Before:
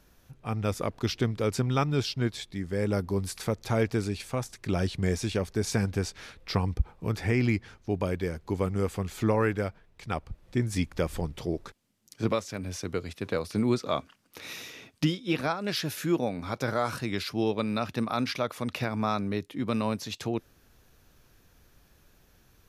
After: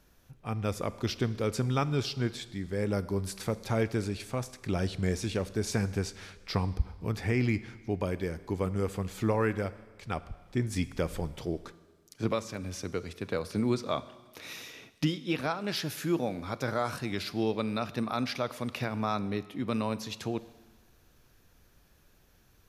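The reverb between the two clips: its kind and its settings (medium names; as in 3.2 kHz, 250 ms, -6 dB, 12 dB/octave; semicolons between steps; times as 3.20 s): Schroeder reverb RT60 1.4 s, combs from 32 ms, DRR 15.5 dB; trim -2.5 dB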